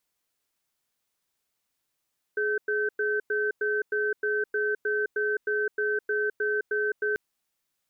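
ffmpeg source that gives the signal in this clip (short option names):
-f lavfi -i "aevalsrc='0.0473*(sin(2*PI*421*t)+sin(2*PI*1540*t))*clip(min(mod(t,0.31),0.21-mod(t,0.31))/0.005,0,1)':d=4.79:s=44100"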